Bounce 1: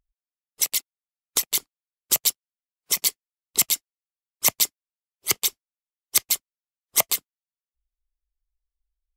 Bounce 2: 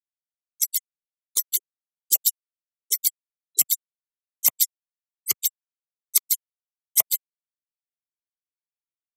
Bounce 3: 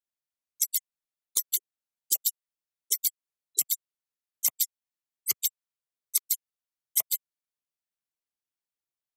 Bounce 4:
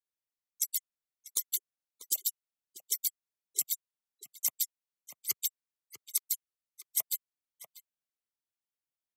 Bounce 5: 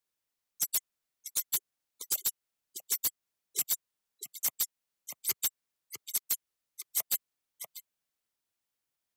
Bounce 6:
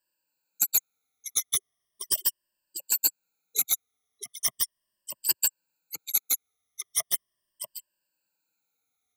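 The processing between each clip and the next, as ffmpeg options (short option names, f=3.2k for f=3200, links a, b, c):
-af "afftfilt=real='re*gte(hypot(re,im),0.0794)':imag='im*gte(hypot(re,im),0.0794)':win_size=1024:overlap=0.75,acompressor=mode=upward:threshold=-40dB:ratio=2.5,crystalizer=i=2.5:c=0,volume=-10.5dB"
-af "acompressor=threshold=-22dB:ratio=6"
-filter_complex "[0:a]asplit=2[a][b];[b]adelay=641.4,volume=-8dB,highshelf=f=4k:g=-14.4[c];[a][c]amix=inputs=2:normalize=0,volume=-5dB"
-af "alimiter=limit=-17.5dB:level=0:latency=1:release=161,asoftclip=type=hard:threshold=-31dB,volume=7dB"
-af "afftfilt=real='re*pow(10,23/40*sin(2*PI*(1.3*log(max(b,1)*sr/1024/100)/log(2)-(-0.38)*(pts-256)/sr)))':imag='im*pow(10,23/40*sin(2*PI*(1.3*log(max(b,1)*sr/1024/100)/log(2)-(-0.38)*(pts-256)/sr)))':win_size=1024:overlap=0.75"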